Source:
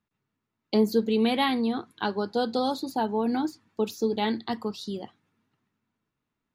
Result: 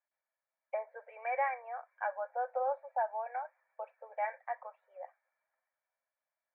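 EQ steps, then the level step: Chebyshev high-pass 520 Hz, order 8; rippled Chebyshev low-pass 2.4 kHz, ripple 9 dB; 0.0 dB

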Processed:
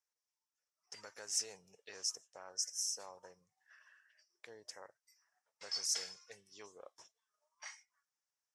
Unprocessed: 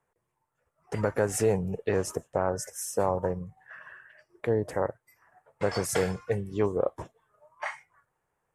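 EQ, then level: band-pass filter 5.5 kHz, Q 5.2; +7.0 dB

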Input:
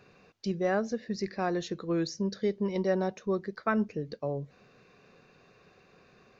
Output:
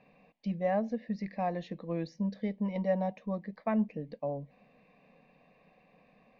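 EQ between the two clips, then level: resonant low-pass 2 kHz, resonance Q 1.7; static phaser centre 380 Hz, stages 6; 0.0 dB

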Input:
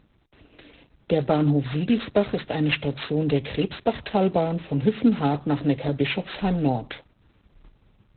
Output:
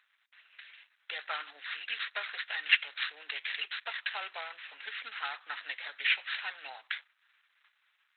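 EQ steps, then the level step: ladder high-pass 1.4 kHz, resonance 45%; +6.5 dB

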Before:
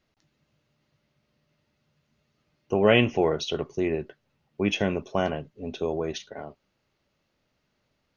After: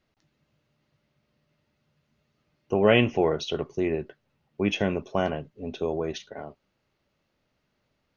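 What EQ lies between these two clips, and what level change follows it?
treble shelf 4.9 kHz -5 dB; 0.0 dB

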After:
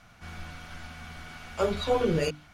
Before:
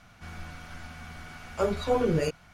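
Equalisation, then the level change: hum notches 50/100/150/200/250/300 Hz; dynamic bell 3.4 kHz, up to +6 dB, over -55 dBFS, Q 1.6; 0.0 dB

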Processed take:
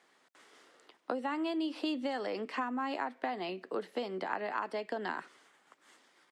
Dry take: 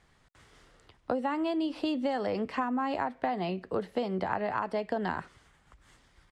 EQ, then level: dynamic bell 640 Hz, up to -6 dB, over -42 dBFS, Q 0.8; high-pass 270 Hz 24 dB/octave; 0.0 dB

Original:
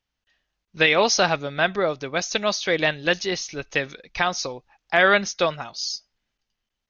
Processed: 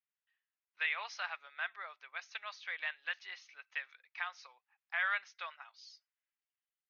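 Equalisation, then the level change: Butterworth band-pass 1.4 kHz, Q 0.97; distance through air 56 m; differentiator; -1.0 dB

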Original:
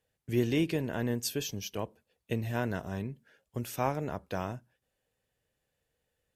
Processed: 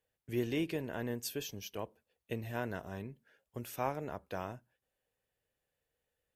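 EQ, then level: tone controls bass -9 dB, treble -7 dB; bass shelf 140 Hz +8 dB; treble shelf 8.5 kHz +10.5 dB; -4.5 dB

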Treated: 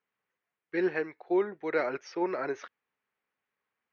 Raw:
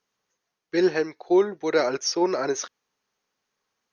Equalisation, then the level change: high-pass 41 Hz; resonant low-pass 2.2 kHz, resonance Q 1.8; -8.0 dB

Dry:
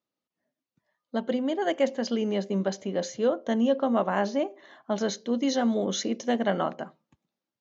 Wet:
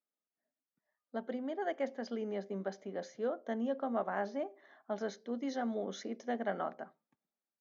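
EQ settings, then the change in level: cabinet simulation 310–5900 Hz, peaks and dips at 330 Hz -6 dB, 530 Hz -6 dB, 1 kHz -7 dB, 2.8 kHz -10 dB, 4.1 kHz -5 dB; treble shelf 3 kHz -10 dB; -5.0 dB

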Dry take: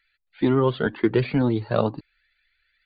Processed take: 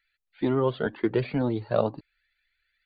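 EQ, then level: dynamic bell 620 Hz, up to +6 dB, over -35 dBFS, Q 1.6; -6.0 dB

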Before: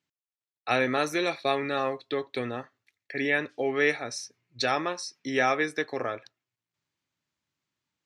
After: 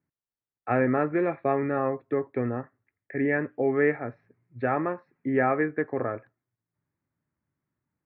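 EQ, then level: steep low-pass 2 kHz 36 dB/octave; bass shelf 400 Hz +11 dB; -2.0 dB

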